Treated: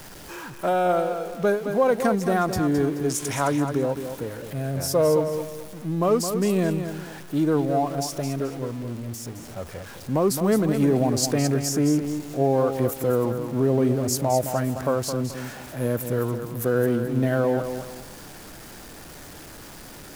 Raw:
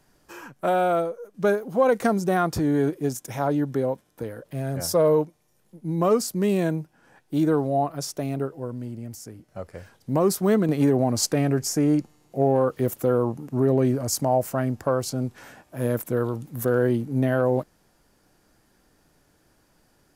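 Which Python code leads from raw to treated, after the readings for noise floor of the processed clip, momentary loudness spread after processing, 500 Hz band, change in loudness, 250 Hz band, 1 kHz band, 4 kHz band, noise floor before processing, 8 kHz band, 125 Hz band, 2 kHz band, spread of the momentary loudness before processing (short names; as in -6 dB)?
-42 dBFS, 17 LU, 0.0 dB, 0.0 dB, +0.5 dB, +0.5 dB, +1.5 dB, -64 dBFS, +1.5 dB, +0.5 dB, +1.0 dB, 14 LU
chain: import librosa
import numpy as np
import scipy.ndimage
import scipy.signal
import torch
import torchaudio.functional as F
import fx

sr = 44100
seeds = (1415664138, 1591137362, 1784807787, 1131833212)

y = x + 0.5 * 10.0 ** (-36.0 / 20.0) * np.sign(x)
y = fx.spec_box(y, sr, start_s=3.09, length_s=0.43, low_hz=910.0, high_hz=11000.0, gain_db=7)
y = fx.echo_crushed(y, sr, ms=215, feedback_pct=35, bits=8, wet_db=-8.0)
y = y * librosa.db_to_amplitude(-1.0)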